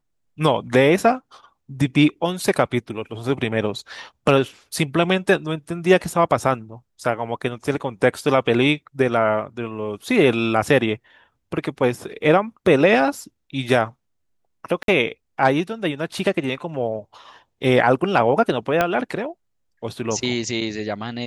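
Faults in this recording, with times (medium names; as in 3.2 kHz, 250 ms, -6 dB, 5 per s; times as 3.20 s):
14.83–14.88 s: dropout 52 ms
18.81 s: pop -5 dBFS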